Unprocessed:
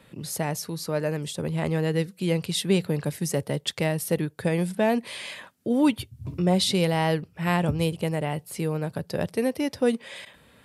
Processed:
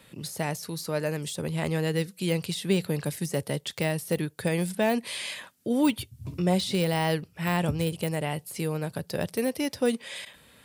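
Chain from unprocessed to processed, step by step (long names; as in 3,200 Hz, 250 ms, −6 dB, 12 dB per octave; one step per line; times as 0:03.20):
de-essing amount 80%
high-shelf EQ 2,700 Hz +9 dB
level −2.5 dB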